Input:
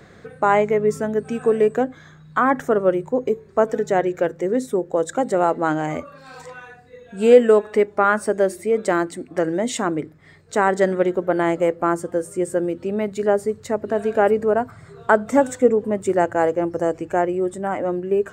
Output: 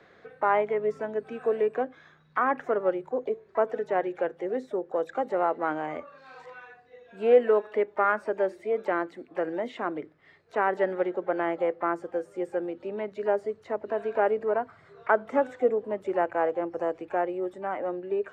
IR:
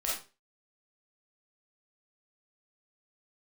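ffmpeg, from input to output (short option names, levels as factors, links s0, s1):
-filter_complex "[0:a]acrossover=split=320 4800:gain=0.224 1 0.0708[s0][s1][s2];[s0][s1][s2]amix=inputs=3:normalize=0,asplit=2[s3][s4];[s4]asetrate=66075,aresample=44100,atempo=0.66742,volume=0.126[s5];[s3][s5]amix=inputs=2:normalize=0,acrossover=split=2900[s6][s7];[s7]acompressor=threshold=0.002:ratio=4:attack=1:release=60[s8];[s6][s8]amix=inputs=2:normalize=0,volume=0.473"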